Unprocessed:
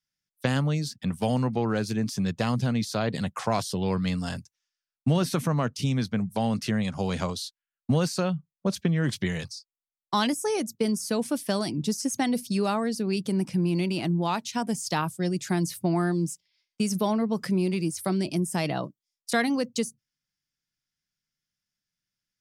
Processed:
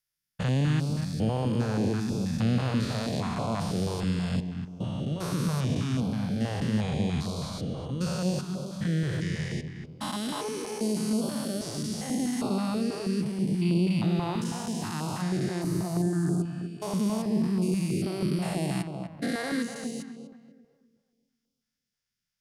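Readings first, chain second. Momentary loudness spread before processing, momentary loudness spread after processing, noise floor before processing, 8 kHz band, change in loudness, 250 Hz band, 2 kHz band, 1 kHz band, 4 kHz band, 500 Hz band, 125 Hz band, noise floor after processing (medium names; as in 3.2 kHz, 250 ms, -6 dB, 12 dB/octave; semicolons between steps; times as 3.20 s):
6 LU, 7 LU, under -85 dBFS, -4.0 dB, -2.0 dB, -1.0 dB, -4.5 dB, -5.5 dB, -3.5 dB, -4.0 dB, +0.5 dB, -85 dBFS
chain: spectrogram pixelated in time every 400 ms; filtered feedback delay 247 ms, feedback 41%, low-pass 2.1 kHz, level -7 dB; step-sequenced notch 6.2 Hz 220–1800 Hz; trim +2.5 dB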